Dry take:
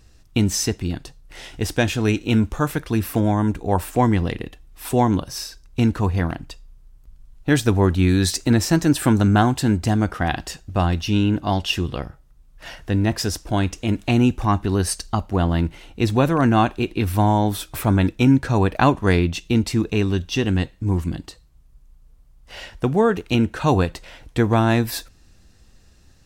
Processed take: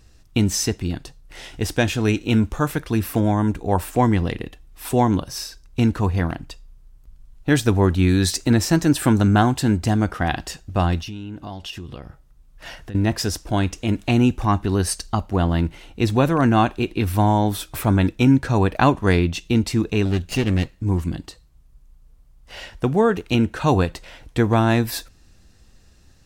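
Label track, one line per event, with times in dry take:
11.000000	12.950000	downward compressor, threshold −30 dBFS
20.050000	20.770000	lower of the sound and its delayed copy delay 0.43 ms

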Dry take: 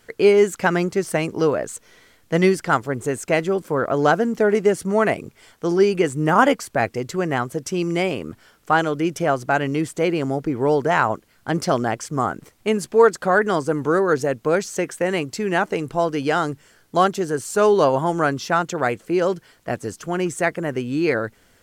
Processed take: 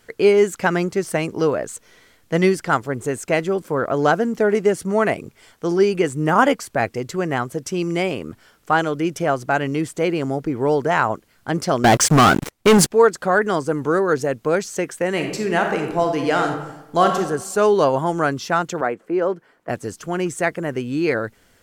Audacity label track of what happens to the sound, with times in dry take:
11.840000	12.910000	leveller curve on the samples passes 5
15.100000	17.180000	thrown reverb, RT60 0.93 s, DRR 3 dB
18.810000	19.690000	three-way crossover with the lows and the highs turned down lows −17 dB, under 190 Hz, highs −16 dB, over 2,000 Hz

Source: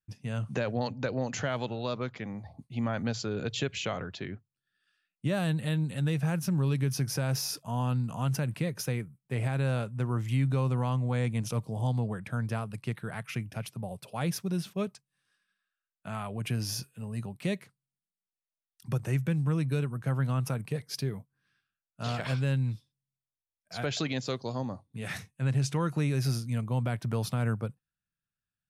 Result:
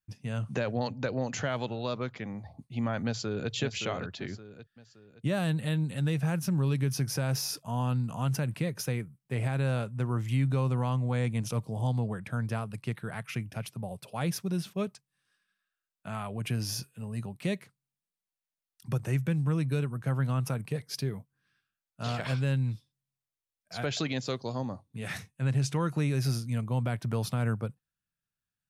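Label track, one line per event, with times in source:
3.050000	3.520000	delay throw 570 ms, feedback 40%, level −7.5 dB

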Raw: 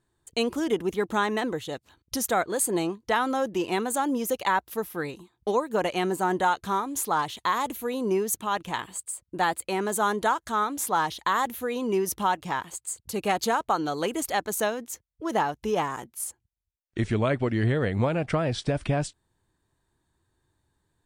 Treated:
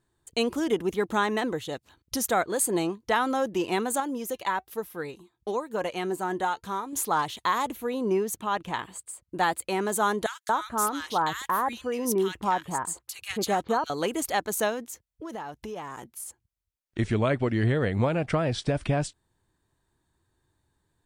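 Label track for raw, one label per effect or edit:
4.000000	6.930000	flanger 1.1 Hz, delay 1.8 ms, depth 1.3 ms, regen +81%
7.650000	9.290000	high-shelf EQ 4,300 Hz −7 dB
10.260000	13.900000	multiband delay without the direct sound highs, lows 230 ms, split 1,700 Hz
14.840000	16.990000	downward compressor 4 to 1, threshold −35 dBFS

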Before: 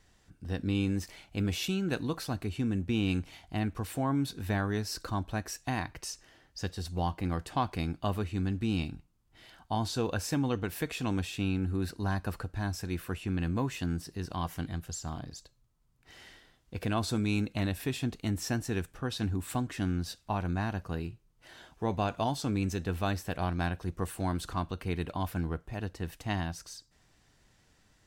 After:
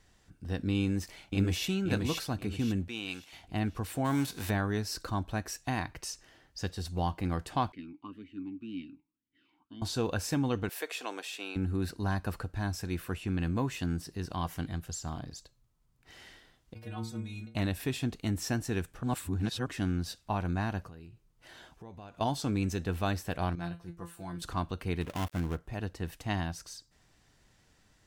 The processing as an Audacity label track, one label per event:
0.790000	1.660000	delay throw 530 ms, feedback 35%, level −3 dB
2.880000	3.330000	high-pass filter 1,100 Hz 6 dB per octave
4.040000	4.490000	spectral envelope flattened exponent 0.6
7.720000	9.820000	formant filter swept between two vowels i-u 1.9 Hz
10.690000	11.560000	high-pass filter 410 Hz 24 dB per octave
16.740000	17.550000	stiff-string resonator 110 Hz, decay 0.45 s, inharmonicity 0.008
19.030000	19.660000	reverse
20.880000	22.210000	downward compressor 4 to 1, threshold −47 dBFS
23.550000	24.420000	tuned comb filter 170 Hz, decay 0.2 s, mix 90%
25.010000	25.590000	gap after every zero crossing of 0.28 ms

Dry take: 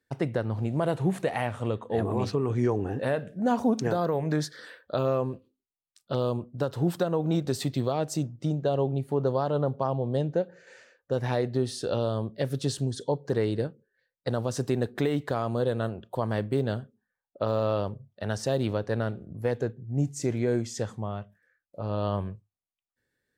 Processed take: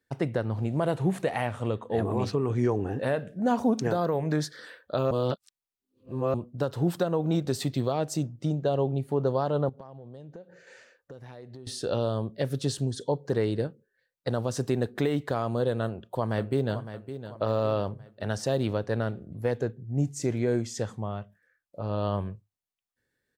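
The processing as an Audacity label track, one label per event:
5.110000	6.340000	reverse
9.690000	11.670000	downward compressor, threshold −42 dBFS
15.810000	16.780000	delay throw 560 ms, feedback 45%, level −11.5 dB

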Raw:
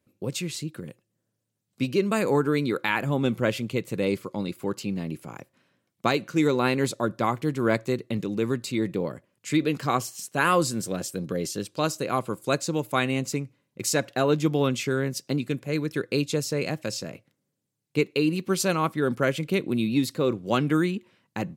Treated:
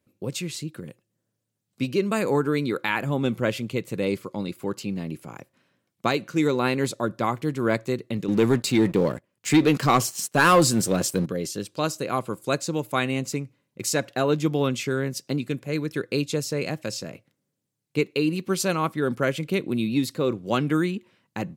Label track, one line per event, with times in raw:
8.280000	11.260000	leveller curve on the samples passes 2

